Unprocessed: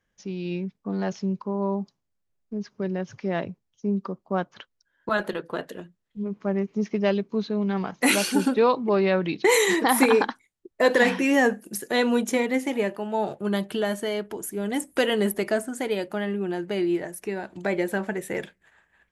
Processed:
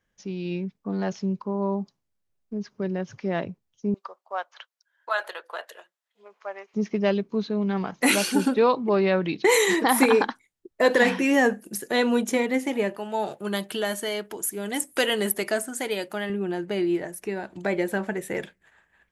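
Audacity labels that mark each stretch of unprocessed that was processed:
3.940000	6.740000	high-pass 640 Hz 24 dB/octave
12.970000	16.300000	tilt EQ +2 dB/octave

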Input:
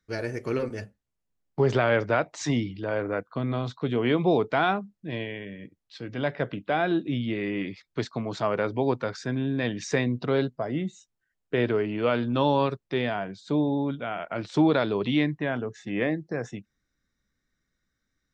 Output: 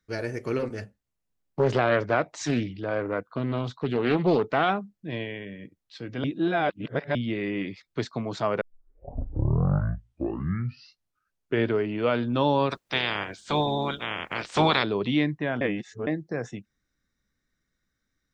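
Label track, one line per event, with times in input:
0.620000	4.700000	loudspeaker Doppler distortion depth 0.39 ms
6.240000	7.150000	reverse
8.610000	8.610000	tape start 3.16 s
12.700000	14.820000	spectral peaks clipped ceiling under each frame's peak by 26 dB
15.610000	16.070000	reverse

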